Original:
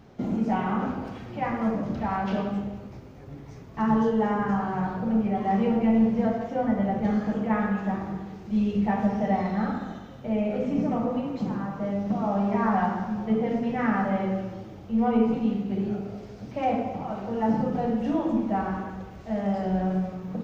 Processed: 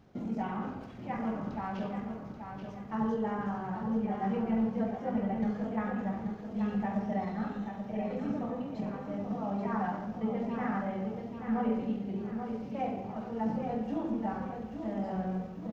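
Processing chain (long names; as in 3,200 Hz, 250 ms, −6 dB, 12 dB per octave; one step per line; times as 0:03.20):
tempo change 1.3×
on a send: repeating echo 832 ms, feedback 40%, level −7 dB
on the sum: level −8.5 dB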